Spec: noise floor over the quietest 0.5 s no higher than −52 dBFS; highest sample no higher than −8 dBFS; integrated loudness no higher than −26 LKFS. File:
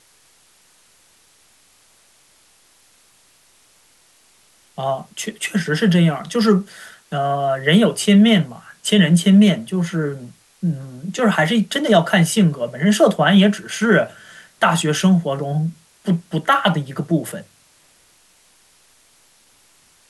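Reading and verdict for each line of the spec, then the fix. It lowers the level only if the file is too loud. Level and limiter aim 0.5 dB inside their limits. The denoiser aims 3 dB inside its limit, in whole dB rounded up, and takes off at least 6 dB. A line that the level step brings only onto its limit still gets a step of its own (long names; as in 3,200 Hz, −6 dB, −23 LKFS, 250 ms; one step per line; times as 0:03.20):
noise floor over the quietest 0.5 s −55 dBFS: in spec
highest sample −3.0 dBFS: out of spec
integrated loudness −17.5 LKFS: out of spec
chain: level −9 dB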